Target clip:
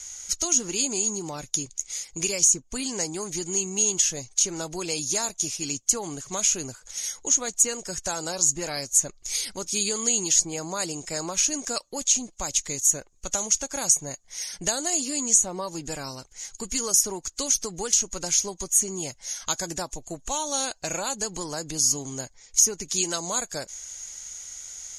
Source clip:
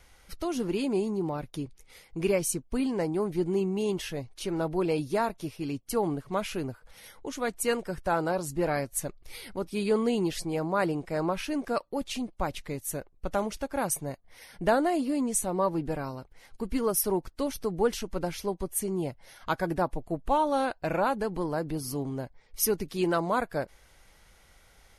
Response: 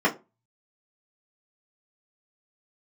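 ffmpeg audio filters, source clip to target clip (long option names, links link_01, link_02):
-filter_complex "[0:a]crystalizer=i=7:c=0,lowpass=frequency=6700:width_type=q:width=15,acrossover=split=1100|2900[link_01][link_02][link_03];[link_01]acompressor=threshold=-29dB:ratio=4[link_04];[link_02]acompressor=threshold=-40dB:ratio=4[link_05];[link_03]acompressor=threshold=-18dB:ratio=4[link_06];[link_04][link_05][link_06]amix=inputs=3:normalize=0,volume=-2dB"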